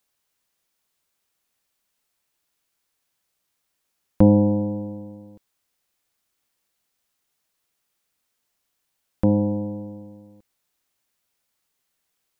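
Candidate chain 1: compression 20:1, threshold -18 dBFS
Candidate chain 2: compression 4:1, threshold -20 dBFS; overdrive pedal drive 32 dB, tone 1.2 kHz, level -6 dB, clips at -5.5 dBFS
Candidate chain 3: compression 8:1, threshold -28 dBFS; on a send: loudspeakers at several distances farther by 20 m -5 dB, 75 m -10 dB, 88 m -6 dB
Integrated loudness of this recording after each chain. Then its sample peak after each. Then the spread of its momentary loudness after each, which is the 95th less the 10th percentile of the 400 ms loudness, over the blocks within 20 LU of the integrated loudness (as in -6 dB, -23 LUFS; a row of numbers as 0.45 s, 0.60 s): -27.0 LUFS, -18.0 LUFS, -32.0 LUFS; -5.0 dBFS, -6.0 dBFS, -10.5 dBFS; 17 LU, 17 LU, 17 LU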